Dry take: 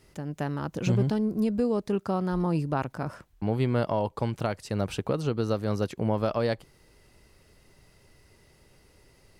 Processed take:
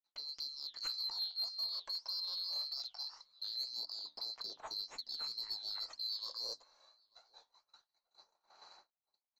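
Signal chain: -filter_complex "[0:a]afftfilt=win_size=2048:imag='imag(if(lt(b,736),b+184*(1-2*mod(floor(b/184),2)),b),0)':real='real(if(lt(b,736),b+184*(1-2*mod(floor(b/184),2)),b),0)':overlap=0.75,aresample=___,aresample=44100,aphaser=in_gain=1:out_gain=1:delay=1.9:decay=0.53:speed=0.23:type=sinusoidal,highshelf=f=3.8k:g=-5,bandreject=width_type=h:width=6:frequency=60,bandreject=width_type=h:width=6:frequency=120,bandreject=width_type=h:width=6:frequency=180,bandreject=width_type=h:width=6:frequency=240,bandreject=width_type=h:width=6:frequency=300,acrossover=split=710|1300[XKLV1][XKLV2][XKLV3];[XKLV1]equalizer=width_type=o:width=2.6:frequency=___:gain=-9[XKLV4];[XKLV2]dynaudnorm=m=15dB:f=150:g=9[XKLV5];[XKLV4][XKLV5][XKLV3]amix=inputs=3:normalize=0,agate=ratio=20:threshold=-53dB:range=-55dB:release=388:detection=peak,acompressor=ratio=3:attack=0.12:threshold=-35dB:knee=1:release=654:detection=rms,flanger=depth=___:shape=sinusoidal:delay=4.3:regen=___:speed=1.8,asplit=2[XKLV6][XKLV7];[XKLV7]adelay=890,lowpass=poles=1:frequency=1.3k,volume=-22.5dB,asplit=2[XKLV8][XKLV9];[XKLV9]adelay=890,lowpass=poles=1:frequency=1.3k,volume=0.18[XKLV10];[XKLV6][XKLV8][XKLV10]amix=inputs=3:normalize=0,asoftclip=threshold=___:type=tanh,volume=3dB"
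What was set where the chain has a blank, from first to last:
16000, 88, 8.4, -65, -33dB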